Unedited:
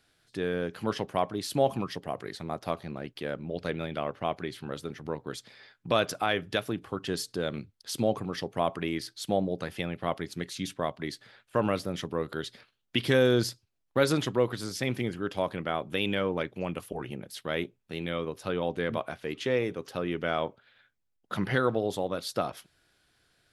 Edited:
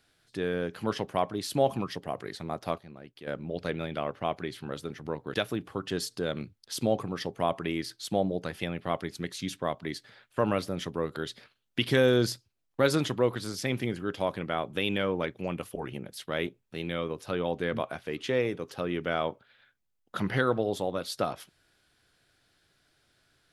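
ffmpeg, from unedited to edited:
ffmpeg -i in.wav -filter_complex "[0:a]asplit=4[link_01][link_02][link_03][link_04];[link_01]atrim=end=2.782[link_05];[link_02]atrim=start=2.778:end=3.272,asetpts=PTS-STARTPTS,volume=-9.5dB[link_06];[link_03]atrim=start=3.268:end=5.342[link_07];[link_04]atrim=start=6.508[link_08];[link_05][link_06]acrossfade=duration=0.004:curve1=hsin:curve2=hsin[link_09];[link_09][link_07]acrossfade=duration=0.004:curve1=hsin:curve2=hsin[link_10];[link_10][link_08]acrossfade=duration=0.004:curve1=hsin:curve2=hsin" out.wav

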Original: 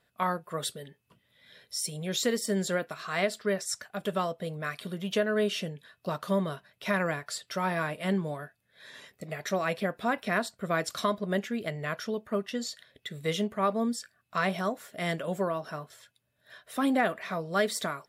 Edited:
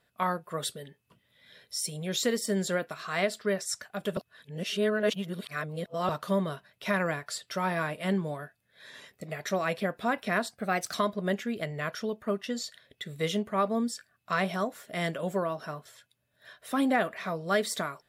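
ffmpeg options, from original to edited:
ffmpeg -i in.wav -filter_complex "[0:a]asplit=5[link_01][link_02][link_03][link_04][link_05];[link_01]atrim=end=4.172[link_06];[link_02]atrim=start=4.168:end=6.092,asetpts=PTS-STARTPTS,areverse[link_07];[link_03]atrim=start=6.088:end=10.514[link_08];[link_04]atrim=start=10.51:end=10.99,asetpts=PTS-STARTPTS,asetrate=48951,aresample=44100,atrim=end_sample=19070,asetpts=PTS-STARTPTS[link_09];[link_05]atrim=start=10.986[link_10];[link_06][link_07]acrossfade=duration=0.004:curve1=hsin:curve2=hsin[link_11];[link_11][link_08]acrossfade=duration=0.004:curve1=hsin:curve2=hsin[link_12];[link_12][link_09]acrossfade=duration=0.004:curve1=hsin:curve2=hsin[link_13];[link_13][link_10]acrossfade=duration=0.004:curve1=hsin:curve2=hsin" out.wav

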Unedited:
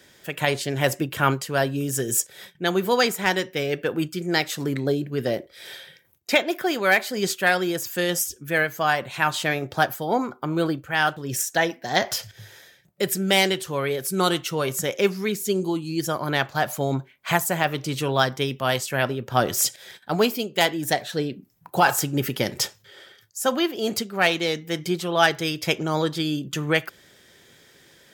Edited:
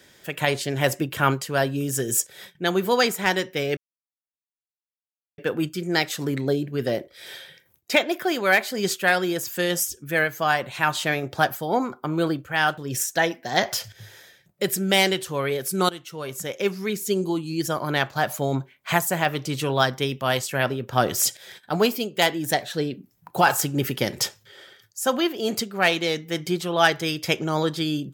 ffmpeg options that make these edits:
ffmpeg -i in.wav -filter_complex "[0:a]asplit=3[link_01][link_02][link_03];[link_01]atrim=end=3.77,asetpts=PTS-STARTPTS,afade=type=out:start_time=3.766:duration=0.004:curve=hsin,apad=pad_dur=1.61[link_04];[link_02]atrim=start=3.77:end=14.28,asetpts=PTS-STARTPTS,afade=type=in:duration=0.004:curve=hsin,afade=type=out:start_time=10.506:duration=0.004:curve=hsin:silence=0.16788[link_05];[link_03]atrim=start=14.28,asetpts=PTS-STARTPTS,afade=type=in:duration=1.23:silence=0.16788[link_06];[link_04][link_05][link_06]concat=n=3:v=0:a=1" out.wav

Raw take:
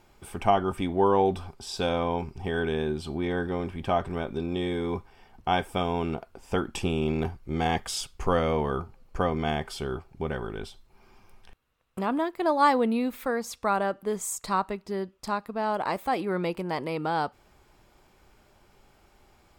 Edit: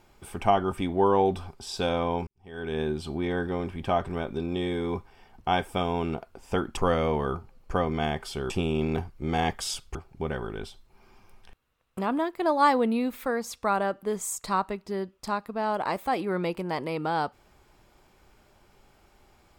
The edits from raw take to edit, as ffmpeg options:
ffmpeg -i in.wav -filter_complex "[0:a]asplit=5[link_01][link_02][link_03][link_04][link_05];[link_01]atrim=end=2.27,asetpts=PTS-STARTPTS,afade=type=out:start_time=2.266:duration=0.004:curve=hsin[link_06];[link_02]atrim=start=2.27:end=6.772,asetpts=PTS-STARTPTS,afade=type=in:duration=0.53:curve=qua[link_07];[link_03]atrim=start=8.218:end=9.952[link_08];[link_04]atrim=start=6.768:end=8.222[link_09];[link_05]atrim=start=9.948[link_10];[link_06][link_07]concat=n=2:v=0:a=1[link_11];[link_11][link_08]acrossfade=duration=0.004:curve1=hsin:curve2=hsin[link_12];[link_12][link_09]acrossfade=duration=0.004:curve1=hsin:curve2=hsin[link_13];[link_13][link_10]acrossfade=duration=0.004:curve1=hsin:curve2=hsin" out.wav

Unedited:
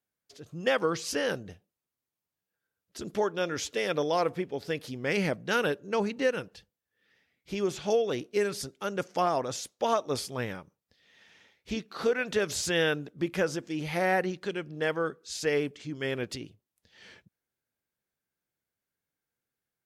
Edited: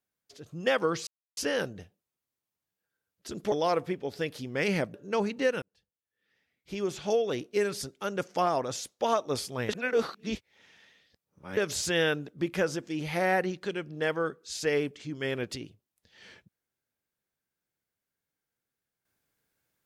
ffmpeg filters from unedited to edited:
ffmpeg -i in.wav -filter_complex "[0:a]asplit=7[link_01][link_02][link_03][link_04][link_05][link_06][link_07];[link_01]atrim=end=1.07,asetpts=PTS-STARTPTS,afade=type=out:start_time=1.066:duration=0.004:curve=hsin,apad=pad_dur=0.3[link_08];[link_02]atrim=start=1.07:end=3.222,asetpts=PTS-STARTPTS,afade=type=in:duration=0.004:curve=hsin[link_09];[link_03]atrim=start=4.008:end=5.432[link_10];[link_04]atrim=start=5.738:end=6.42,asetpts=PTS-STARTPTS,afade=type=out:start_time=0.678:duration=0.004:curve=hsin[link_11];[link_05]atrim=start=6.42:end=10.492,asetpts=PTS-STARTPTS,afade=type=in:duration=2.1:curve=qsin[link_12];[link_06]atrim=start=10.488:end=12.372,asetpts=PTS-STARTPTS,areverse[link_13];[link_07]atrim=start=12.368[link_14];[link_08][link_09]concat=n=2:v=0:a=1[link_15];[link_15][link_10]acrossfade=duration=0.004:curve1=hsin:curve2=hsin[link_16];[link_11][link_12]concat=n=2:v=0:a=1[link_17];[link_16][link_17]acrossfade=duration=0.004:curve1=hsin:curve2=hsin[link_18];[link_18][link_13]acrossfade=duration=0.004:curve1=hsin:curve2=hsin[link_19];[link_19][link_14]acrossfade=duration=0.004:curve1=hsin:curve2=hsin" out.wav

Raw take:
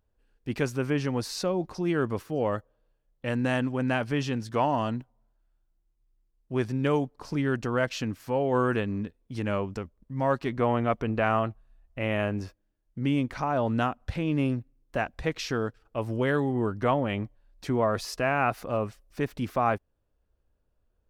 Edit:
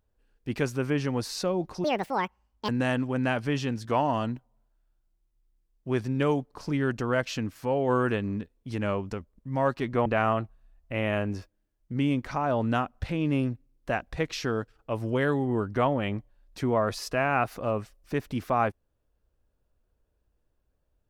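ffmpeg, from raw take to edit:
ffmpeg -i in.wav -filter_complex "[0:a]asplit=4[link_01][link_02][link_03][link_04];[link_01]atrim=end=1.844[link_05];[link_02]atrim=start=1.84:end=3.33,asetpts=PTS-STARTPTS,asetrate=77616,aresample=44100[link_06];[link_03]atrim=start=3.326:end=10.702[link_07];[link_04]atrim=start=11.118[link_08];[link_05][link_06]acrossfade=duration=0.004:curve1=hsin:curve2=hsin[link_09];[link_09][link_07]acrossfade=duration=0.004:curve1=hsin:curve2=hsin[link_10];[link_10][link_08]acrossfade=duration=0.004:curve1=hsin:curve2=hsin" out.wav

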